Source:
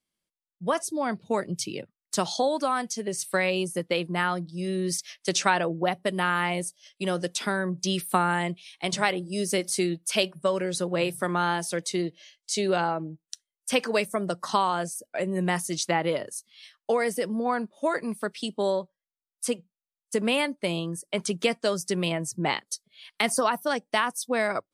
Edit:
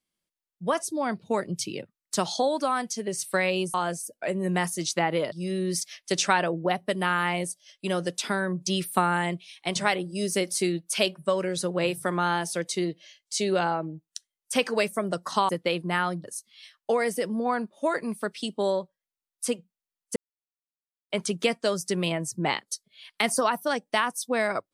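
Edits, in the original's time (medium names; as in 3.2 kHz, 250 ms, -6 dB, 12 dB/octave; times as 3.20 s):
3.74–4.49 s: swap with 14.66–16.24 s
20.16–21.10 s: mute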